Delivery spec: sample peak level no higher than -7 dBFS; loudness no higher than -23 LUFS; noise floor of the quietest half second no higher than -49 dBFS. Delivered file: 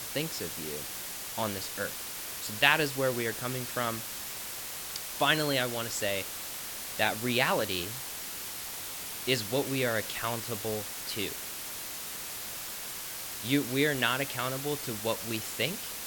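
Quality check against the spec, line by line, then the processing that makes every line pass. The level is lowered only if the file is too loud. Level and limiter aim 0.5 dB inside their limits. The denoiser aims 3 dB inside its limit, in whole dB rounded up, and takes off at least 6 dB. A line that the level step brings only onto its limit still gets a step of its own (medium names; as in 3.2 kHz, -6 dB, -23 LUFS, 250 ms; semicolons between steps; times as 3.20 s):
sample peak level -5.5 dBFS: fail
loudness -31.0 LUFS: pass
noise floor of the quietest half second -39 dBFS: fail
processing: noise reduction 13 dB, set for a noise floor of -39 dBFS; peak limiter -7.5 dBFS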